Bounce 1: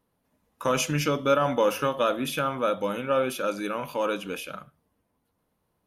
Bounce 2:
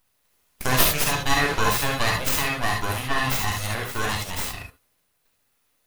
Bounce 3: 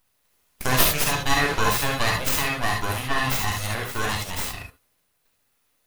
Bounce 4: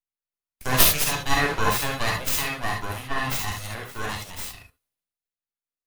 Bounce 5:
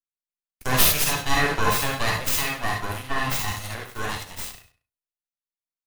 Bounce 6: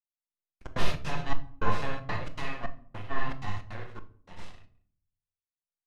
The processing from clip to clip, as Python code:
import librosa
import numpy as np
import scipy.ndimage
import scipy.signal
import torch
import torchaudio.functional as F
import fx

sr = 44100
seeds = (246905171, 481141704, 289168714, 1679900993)

y1 = fx.bass_treble(x, sr, bass_db=-8, treble_db=14)
y1 = np.abs(y1)
y1 = fx.rev_gated(y1, sr, seeds[0], gate_ms=90, shape='rising', drr_db=0.5)
y1 = y1 * 10.0 ** (3.0 / 20.0)
y2 = y1
y3 = fx.band_widen(y2, sr, depth_pct=70)
y3 = y3 * 10.0 ** (-2.5 / 20.0)
y4 = fx.leveller(y3, sr, passes=2)
y4 = fx.echo_feedback(y4, sr, ms=98, feedback_pct=21, wet_db=-13.5)
y4 = y4 * 10.0 ** (-6.5 / 20.0)
y5 = fx.step_gate(y4, sr, bpm=158, pattern='...xxxx.xx.xxx', floor_db=-60.0, edge_ms=4.5)
y5 = fx.spacing_loss(y5, sr, db_at_10k=28)
y5 = fx.room_shoebox(y5, sr, seeds[1], volume_m3=620.0, walls='furnished', distance_m=0.89)
y5 = y5 * 10.0 ** (-5.0 / 20.0)